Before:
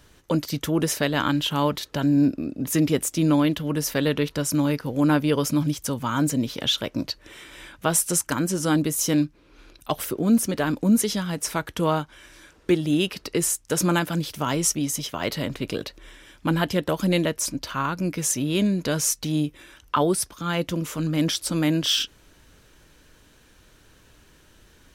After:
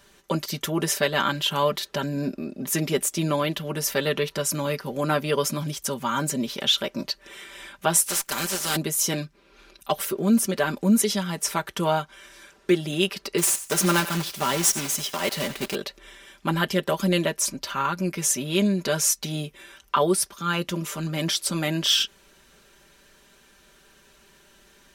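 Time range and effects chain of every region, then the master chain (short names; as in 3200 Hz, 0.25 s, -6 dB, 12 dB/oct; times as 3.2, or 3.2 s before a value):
8.06–8.75 spectral contrast lowered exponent 0.43 + tube stage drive 20 dB, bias 0.55
13.38–15.76 block floating point 3-bit + thinning echo 90 ms, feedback 23%, high-pass 820 Hz, level -13.5 dB
whole clip: low shelf 180 Hz -11 dB; comb 5.1 ms, depth 72%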